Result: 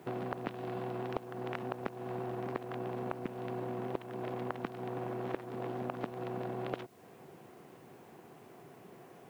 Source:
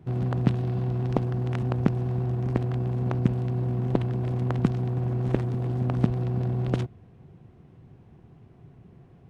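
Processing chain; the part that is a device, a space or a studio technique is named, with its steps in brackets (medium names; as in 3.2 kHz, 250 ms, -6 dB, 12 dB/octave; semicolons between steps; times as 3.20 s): baby monitor (band-pass 430–3400 Hz; compression, threshold -44 dBFS, peak gain reduction 20 dB; white noise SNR 30 dB); trim +8.5 dB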